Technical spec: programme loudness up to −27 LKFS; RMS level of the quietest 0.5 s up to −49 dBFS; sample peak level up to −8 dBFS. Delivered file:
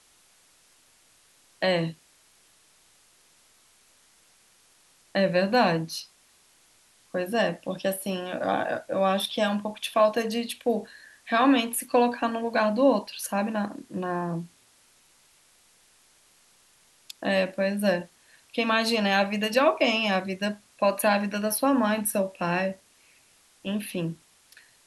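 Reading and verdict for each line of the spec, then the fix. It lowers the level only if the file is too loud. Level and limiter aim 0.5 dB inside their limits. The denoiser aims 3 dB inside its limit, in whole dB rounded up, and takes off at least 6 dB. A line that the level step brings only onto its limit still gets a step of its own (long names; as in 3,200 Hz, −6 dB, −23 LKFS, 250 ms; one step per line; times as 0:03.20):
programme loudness −26.0 LKFS: out of spec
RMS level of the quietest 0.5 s −61 dBFS: in spec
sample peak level −8.5 dBFS: in spec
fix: level −1.5 dB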